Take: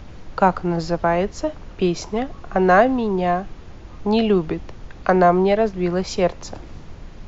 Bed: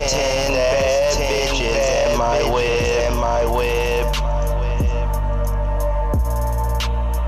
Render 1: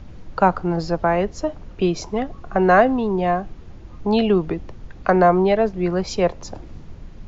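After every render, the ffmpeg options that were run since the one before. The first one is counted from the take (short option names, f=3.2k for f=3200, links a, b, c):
-af "afftdn=nr=6:nf=-39"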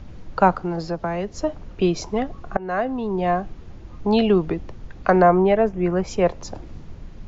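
-filter_complex "[0:a]asettb=1/sr,asplit=3[a][b][c];[a]atrim=end=0.554[d];[b]atrim=start=0.55:end=1.34,asetpts=PTS-STARTPTS,afade=t=in:d=0.004:c=qsin,afade=t=out:st=0.786:d=0.004:c=qsin,acrossover=split=110|290|3400[e][f][g][h];[e]acompressor=threshold=-42dB:ratio=3[i];[f]acompressor=threshold=-30dB:ratio=3[j];[g]acompressor=threshold=-27dB:ratio=3[k];[h]acompressor=threshold=-43dB:ratio=3[l];[i][j][k][l]amix=inputs=4:normalize=0[m];[c]atrim=start=1.336[n];[d][m]acrossfade=d=0.004:c1=hsin:c2=qsin[o];[o][n]acrossfade=d=0.004:c1=qsin:c2=hsin,asettb=1/sr,asplit=3[p][q][r];[p]atrim=end=5.224[s];[q]atrim=start=5.22:end=6.26,asetpts=PTS-STARTPTS,afade=t=in:d=0.004:c=qsin,afade=t=out:st=1.036:d=0.004:c=qsin,equalizer=f=4.3k:w=2.3:g=-13[t];[r]atrim=start=6.256[u];[s][t]acrossfade=d=0.004:c1=hsin:c2=qsin[v];[v][u]acrossfade=d=0.004:c1=qsin:c2=hsin,asplit=2[w][x];[w]atrim=end=2.57,asetpts=PTS-STARTPTS,afade=t=out:st=2.566:d=0.004:c=hsin:silence=0.0841395[y];[x]atrim=start=2.57,asetpts=PTS-STARTPTS,afade=t=in:d=0.82:silence=0.0841395[z];[y][z]concat=n=2:v=0:a=1"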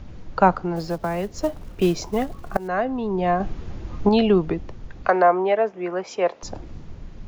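-filter_complex "[0:a]asettb=1/sr,asplit=3[a][b][c];[a]atrim=end=0.764[d];[b]atrim=start=0.76:end=2.68,asetpts=PTS-STARTPTS,afade=t=in:d=0.004:c=qsin,afade=t=out:st=1.916:d=0.004:c=qsin,acrusher=bits=6:mode=log:mix=0:aa=0.000001[e];[c]atrim=start=2.676[f];[d][e]acrossfade=d=0.004:c1=hsin:c2=qsin[g];[g][f]acrossfade=d=0.004:c1=qsin:c2=hsin,asettb=1/sr,asplit=3[h][i][j];[h]atrim=end=3.404[k];[i]atrim=start=3.4:end=4.09,asetpts=PTS-STARTPTS,afade=t=in:d=0.004:c=qsin,afade=t=out:st=0.686:d=0.004:c=qsin,acontrast=65[l];[j]atrim=start=4.086[m];[k][l]acrossfade=d=0.004:c1=hsin:c2=qsin[n];[n][m]acrossfade=d=0.004:c1=qsin:c2=hsin,asettb=1/sr,asplit=3[o][p][q];[o]atrim=end=5.084[r];[p]atrim=start=5.08:end=6.43,asetpts=PTS-STARTPTS,afade=t=in:d=0.004:c=qsin,afade=t=out:st=1.346:d=0.004:c=qsin,highpass=440,lowpass=5.9k[s];[q]atrim=start=6.426[t];[r][s]acrossfade=d=0.004:c1=hsin:c2=qsin[u];[u][t]acrossfade=d=0.004:c1=qsin:c2=hsin"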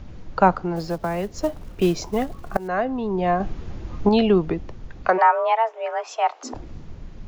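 -filter_complex "[0:a]asplit=3[a][b][c];[a]afade=t=out:st=5.17:d=0.02[d];[b]afreqshift=230,afade=t=in:st=5.17:d=0.02,afade=t=out:st=6.53:d=0.02[e];[c]afade=t=in:st=6.53:d=0.02[f];[d][e][f]amix=inputs=3:normalize=0"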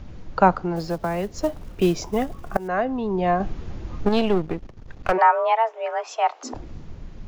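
-filter_complex "[0:a]asettb=1/sr,asplit=3[a][b][c];[a]atrim=end=1.944[d];[b]atrim=start=1.94:end=2.94,asetpts=PTS-STARTPTS,afade=t=in:d=0.004:c=qsin,afade=t=out:st=0.996:d=0.004:c=qsin,bandreject=f=4.2k:w=12[e];[c]atrim=start=2.936[f];[d][e]acrossfade=d=0.004:c1=hsin:c2=qsin[g];[g][f]acrossfade=d=0.004:c1=qsin:c2=hsin,asplit=3[h][i][j];[h]afade=t=out:st=4.03:d=0.02[k];[i]aeval=exprs='if(lt(val(0),0),0.251*val(0),val(0))':c=same,afade=t=in:st=4.03:d=0.02,afade=t=out:st=5.11:d=0.02[l];[j]afade=t=in:st=5.11:d=0.02[m];[k][l][m]amix=inputs=3:normalize=0"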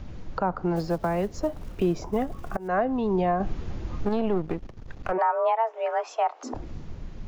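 -filter_complex "[0:a]acrossover=split=1700[a][b];[b]acompressor=threshold=-44dB:ratio=6[c];[a][c]amix=inputs=2:normalize=0,alimiter=limit=-15dB:level=0:latency=1:release=175"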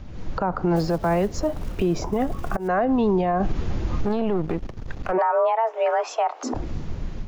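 -af "alimiter=limit=-22dB:level=0:latency=1:release=38,dynaudnorm=f=120:g=3:m=8dB"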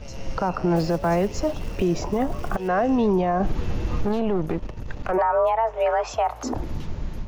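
-filter_complex "[1:a]volume=-23.5dB[a];[0:a][a]amix=inputs=2:normalize=0"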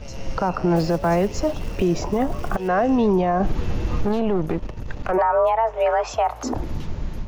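-af "volume=2dB"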